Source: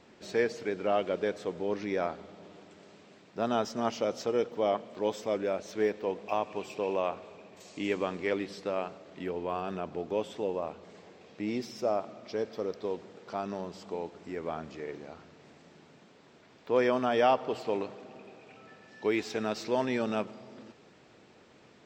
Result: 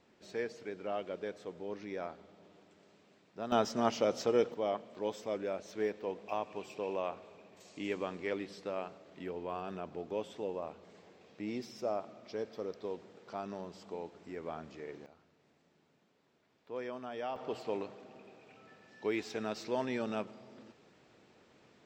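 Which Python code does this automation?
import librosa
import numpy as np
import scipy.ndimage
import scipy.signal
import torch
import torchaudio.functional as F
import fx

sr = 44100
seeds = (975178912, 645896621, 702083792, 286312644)

y = fx.gain(x, sr, db=fx.steps((0.0, -9.5), (3.52, 0.0), (4.54, -6.0), (15.06, -15.0), (17.36, -5.5)))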